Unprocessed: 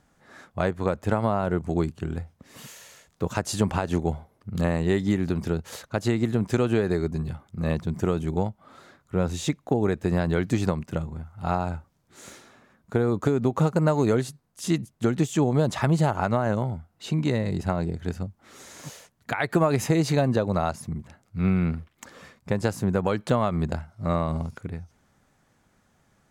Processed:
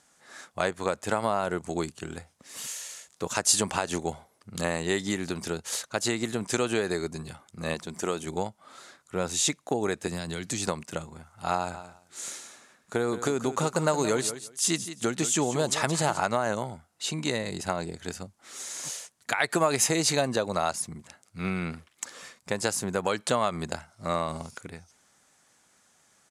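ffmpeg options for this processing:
-filter_complex "[0:a]asettb=1/sr,asplit=3[a][b][c];[a]atrim=end=7.744[d];[b]atrim=start=7.74:end=8.27,asetpts=PTS-STARTPTS,afade=t=in:d=0.004:c=qsin,afade=t=out:st=0.526:d=0.004:c=qsin,equalizer=f=110:t=o:w=0.77:g=-12.5[e];[c]atrim=start=8.266[f];[d][e]acrossfade=d=0.004:c1=hsin:c2=qsin[g];[g][f]acrossfade=d=0.004:c1=qsin:c2=hsin,asettb=1/sr,asplit=3[h][i][j];[h]atrim=end=10.074[k];[i]atrim=start=10.07:end=10.67,asetpts=PTS-STARTPTS,afade=t=in:d=0.004:c=qsin,afade=t=out:st=0.596:d=0.004:c=qsin,acrossover=split=230|3000[l][m][n];[m]acompressor=threshold=-33dB:ratio=6:attack=3.2:release=140:knee=2.83:detection=peak[o];[l][o][n]amix=inputs=3:normalize=0[p];[j]atrim=start=10.666[q];[k][p]acrossfade=d=0.004:c1=hsin:c2=qsin[r];[r][q]acrossfade=d=0.004:c1=qsin:c2=hsin,asplit=3[s][t][u];[s]afade=t=out:st=11.73:d=0.02[v];[t]aecho=1:1:174|348:0.251|0.0427,afade=t=in:st=11.73:d=0.02,afade=t=out:st=16.19:d=0.02[w];[u]afade=t=in:st=16.19:d=0.02[x];[v][w][x]amix=inputs=3:normalize=0,lowpass=f=9.7k:w=0.5412,lowpass=f=9.7k:w=1.3066,aemphasis=mode=production:type=riaa"

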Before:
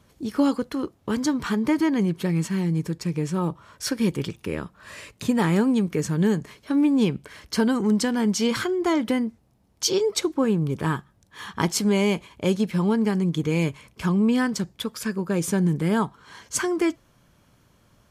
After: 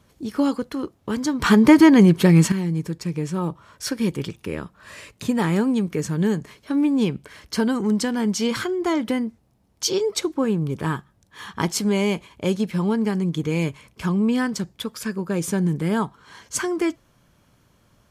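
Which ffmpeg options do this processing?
-filter_complex "[0:a]asplit=3[a][b][c];[a]atrim=end=1.422[d];[b]atrim=start=1.418:end=2.522,asetpts=PTS-STARTPTS,volume=10dB[e];[c]atrim=start=2.518[f];[d][e]acrossfade=d=0.004:c1=hsin:c2=hsin[g];[g][f]acrossfade=d=0.004:c1=hsin:c2=hsin"

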